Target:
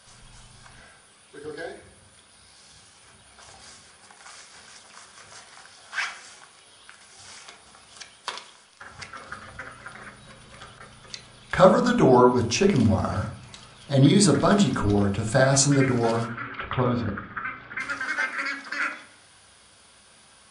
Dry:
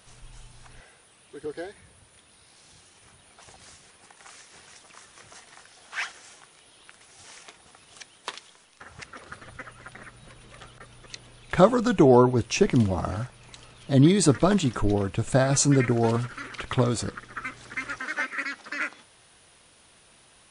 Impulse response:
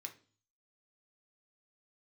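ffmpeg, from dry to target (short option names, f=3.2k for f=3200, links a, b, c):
-filter_complex "[0:a]asplit=3[a][b][c];[a]afade=t=out:st=16.27:d=0.02[d];[b]lowpass=f=2.9k:w=0.5412,lowpass=f=2.9k:w=1.3066,afade=t=in:st=16.27:d=0.02,afade=t=out:st=17.79:d=0.02[e];[c]afade=t=in:st=17.79:d=0.02[f];[d][e][f]amix=inputs=3:normalize=0[g];[1:a]atrim=start_sample=2205,asetrate=27342,aresample=44100[h];[g][h]afir=irnorm=-1:irlink=0,volume=4dB"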